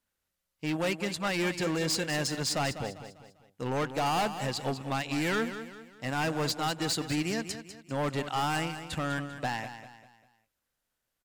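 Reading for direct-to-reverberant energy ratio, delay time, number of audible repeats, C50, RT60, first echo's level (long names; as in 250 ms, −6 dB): no reverb audible, 198 ms, 4, no reverb audible, no reverb audible, −11.0 dB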